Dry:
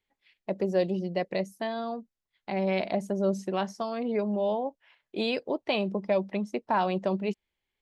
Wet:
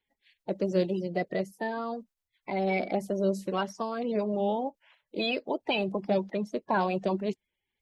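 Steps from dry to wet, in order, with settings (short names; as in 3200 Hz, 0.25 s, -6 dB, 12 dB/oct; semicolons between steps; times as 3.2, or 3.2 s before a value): bin magnitudes rounded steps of 30 dB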